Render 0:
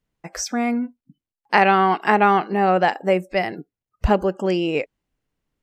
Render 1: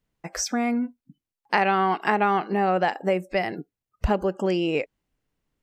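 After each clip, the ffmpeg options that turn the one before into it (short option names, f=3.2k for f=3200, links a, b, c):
-af "acompressor=threshold=-22dB:ratio=2"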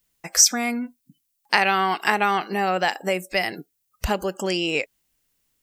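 -af "crystalizer=i=8:c=0,volume=-3dB"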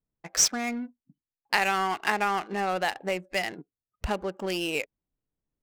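-af "adynamicsmooth=sensitivity=5:basefreq=760,volume=-5.5dB"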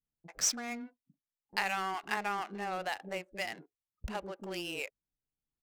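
-filter_complex "[0:a]acrossover=split=390[a][b];[b]adelay=40[c];[a][c]amix=inputs=2:normalize=0,volume=-8dB"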